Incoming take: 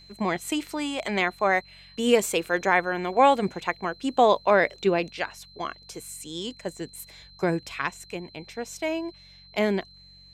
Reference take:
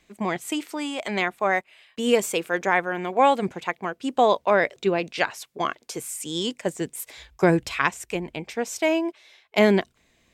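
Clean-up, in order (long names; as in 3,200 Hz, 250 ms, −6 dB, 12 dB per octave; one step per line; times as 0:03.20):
hum removal 46.4 Hz, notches 4
notch filter 4,100 Hz, Q 30
level correction +6.5 dB, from 0:05.10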